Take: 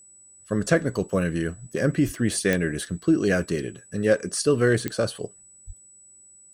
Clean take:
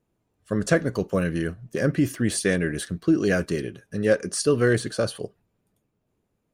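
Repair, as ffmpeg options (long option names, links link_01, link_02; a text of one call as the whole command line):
ffmpeg -i in.wav -filter_complex "[0:a]adeclick=threshold=4,bandreject=frequency=7900:width=30,asplit=3[link_01][link_02][link_03];[link_01]afade=type=out:start_time=2.05:duration=0.02[link_04];[link_02]highpass=frequency=140:width=0.5412,highpass=frequency=140:width=1.3066,afade=type=in:start_time=2.05:duration=0.02,afade=type=out:start_time=2.17:duration=0.02[link_05];[link_03]afade=type=in:start_time=2.17:duration=0.02[link_06];[link_04][link_05][link_06]amix=inputs=3:normalize=0,asplit=3[link_07][link_08][link_09];[link_07]afade=type=out:start_time=5.66:duration=0.02[link_10];[link_08]highpass=frequency=140:width=0.5412,highpass=frequency=140:width=1.3066,afade=type=in:start_time=5.66:duration=0.02,afade=type=out:start_time=5.78:duration=0.02[link_11];[link_09]afade=type=in:start_time=5.78:duration=0.02[link_12];[link_10][link_11][link_12]amix=inputs=3:normalize=0" out.wav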